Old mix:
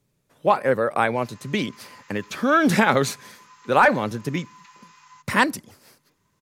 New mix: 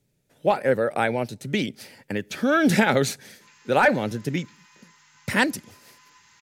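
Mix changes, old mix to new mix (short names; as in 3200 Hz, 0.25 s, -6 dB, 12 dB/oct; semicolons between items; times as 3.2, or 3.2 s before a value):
background: entry +2.25 s; master: add bell 1100 Hz -12.5 dB 0.41 oct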